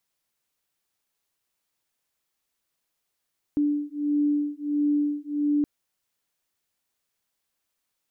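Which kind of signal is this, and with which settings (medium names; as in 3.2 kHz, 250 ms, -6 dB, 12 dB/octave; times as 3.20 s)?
beating tones 292 Hz, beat 1.5 Hz, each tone -25 dBFS 2.07 s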